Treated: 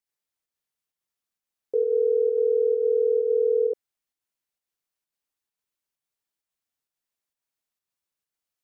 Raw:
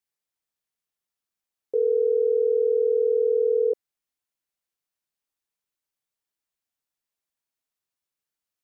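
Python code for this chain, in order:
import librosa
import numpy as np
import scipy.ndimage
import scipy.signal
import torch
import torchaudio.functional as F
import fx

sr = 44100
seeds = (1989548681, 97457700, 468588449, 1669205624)

y = fx.volume_shaper(x, sr, bpm=131, per_beat=1, depth_db=-4, release_ms=88.0, shape='slow start')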